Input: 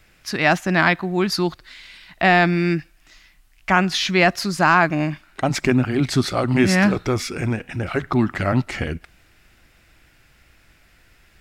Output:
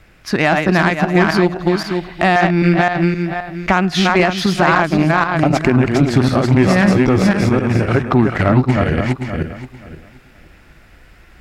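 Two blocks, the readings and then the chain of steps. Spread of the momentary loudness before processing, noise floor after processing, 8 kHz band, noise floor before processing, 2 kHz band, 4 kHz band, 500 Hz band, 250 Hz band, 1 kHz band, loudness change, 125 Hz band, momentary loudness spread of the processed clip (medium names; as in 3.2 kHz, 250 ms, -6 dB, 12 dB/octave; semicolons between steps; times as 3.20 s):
11 LU, -46 dBFS, -0.5 dB, -56 dBFS, +3.0 dB, +2.0 dB, +6.5 dB, +7.0 dB, +4.5 dB, +5.0 dB, +7.5 dB, 8 LU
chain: backward echo that repeats 262 ms, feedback 45%, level -2.5 dB; treble shelf 2.4 kHz -10.5 dB; compression 2.5:1, threshold -24 dBFS, peak gain reduction 9.5 dB; Chebyshev shaper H 7 -26 dB, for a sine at -10 dBFS; loudness maximiser +14 dB; trim -1 dB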